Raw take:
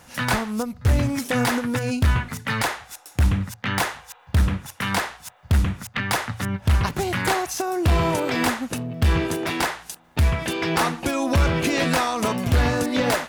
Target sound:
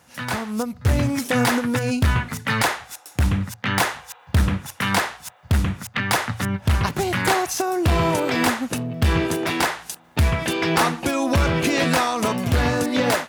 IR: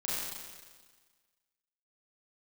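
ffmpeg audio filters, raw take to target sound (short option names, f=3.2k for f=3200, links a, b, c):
-af "highpass=73,dynaudnorm=f=300:g=3:m=11.5dB,volume=-5.5dB"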